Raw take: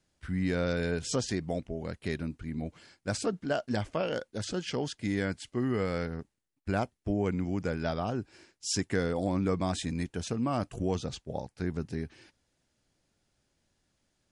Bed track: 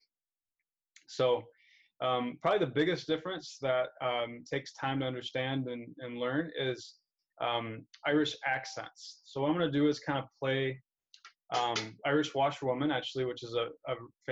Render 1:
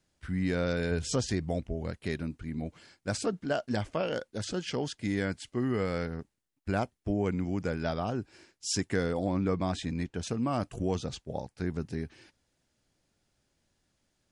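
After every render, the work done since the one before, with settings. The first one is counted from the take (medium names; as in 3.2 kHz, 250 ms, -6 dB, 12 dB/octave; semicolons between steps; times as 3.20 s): 0.91–1.91 s: peaking EQ 61 Hz +9 dB 1.5 oct; 9.19–10.23 s: distance through air 74 m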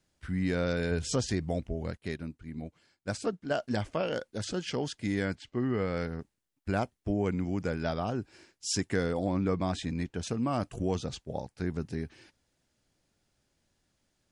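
1.97–3.51 s: upward expansion, over -48 dBFS; 5.35–5.97 s: distance through air 120 m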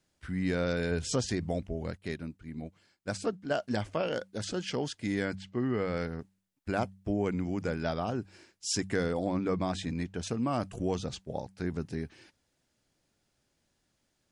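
bass shelf 69 Hz -5 dB; de-hum 95.61 Hz, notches 2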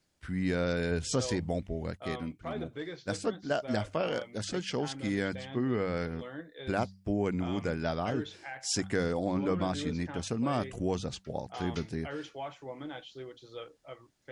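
add bed track -10.5 dB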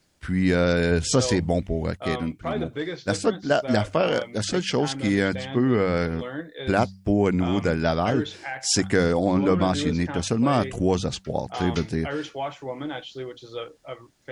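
trim +9.5 dB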